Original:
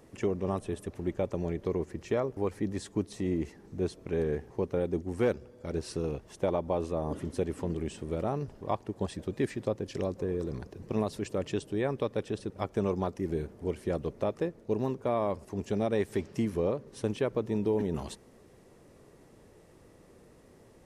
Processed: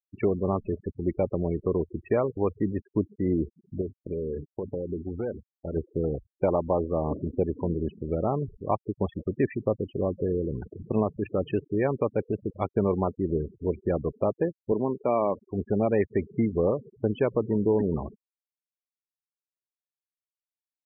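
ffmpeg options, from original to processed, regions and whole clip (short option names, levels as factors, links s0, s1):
-filter_complex "[0:a]asettb=1/sr,asplit=3[s0][s1][s2];[s0]atrim=end=3.814[s3];[s1]atrim=start=3.81:end=5.76,asetpts=PTS-STARTPTS,afade=t=in:d=0.004:c=qsin,afade=t=out:st=1.946:d=0.004:c=qsin,bandreject=f=50:t=h:w=6,bandreject=f=100:t=h:w=6,bandreject=f=150:t=h:w=6,bandreject=f=200:t=h:w=6,bandreject=f=250:t=h:w=6,bandreject=f=300:t=h:w=6,acompressor=threshold=0.0251:ratio=6:attack=3.2:release=140:knee=1:detection=peak,agate=range=0.0224:threshold=0.00708:ratio=3:release=100:detection=peak[s4];[s2]atrim=start=5.756[s5];[s3][s4]acrossfade=d=0.004:c1=hsin:c2=qsin[s6];[s6][s5]acrossfade=d=0.004:c1=qsin:c2=hsin,asettb=1/sr,asplit=3[s7][s8][s9];[s7]atrim=end=14.724[s10];[s8]atrim=start=14.72:end=15.46,asetpts=PTS-STARTPTS,afade=t=in:d=0.004:c=qsin,afade=t=out:st=0.736:d=0.004:c=qsin,highpass=160,lowpass=7800,aemphasis=mode=production:type=50fm[s11];[s9]atrim=start=15.456[s12];[s10][s11]acrossfade=d=0.004:c1=hsin:c2=qsin[s13];[s13][s12]acrossfade=d=0.004:c1=qsin:c2=hsin,lowpass=f=3300:w=0.5412,lowpass=f=3300:w=1.3066,afftfilt=real='re*gte(hypot(re,im),0.0178)':imag='im*gte(hypot(re,im),0.0178)':win_size=1024:overlap=0.75,volume=1.78"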